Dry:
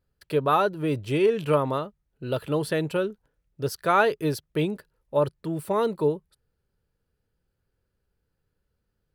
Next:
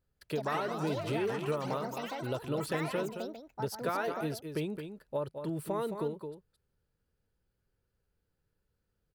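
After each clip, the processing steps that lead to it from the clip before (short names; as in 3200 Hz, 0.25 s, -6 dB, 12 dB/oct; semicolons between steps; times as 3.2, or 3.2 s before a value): compressor, threshold -27 dBFS, peak gain reduction 12 dB; on a send: echo 0.217 s -8 dB; on the sum: echoes that change speed 0.155 s, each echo +7 st, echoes 3, each echo -6 dB; gain -4 dB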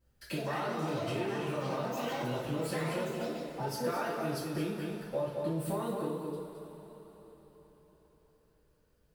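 compressor 3:1, threshold -43 dBFS, peak gain reduction 11.5 dB; two-slope reverb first 0.47 s, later 4.5 s, from -16 dB, DRR -10 dB; gain -1.5 dB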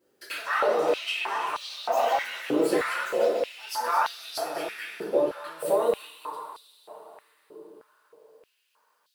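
stepped high-pass 3.2 Hz 360–3800 Hz; gain +6 dB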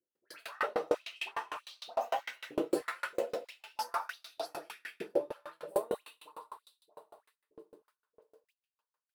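gate -56 dBFS, range -13 dB; dispersion highs, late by 90 ms, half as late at 1700 Hz; dB-ramp tremolo decaying 6.6 Hz, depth 35 dB; gain -1.5 dB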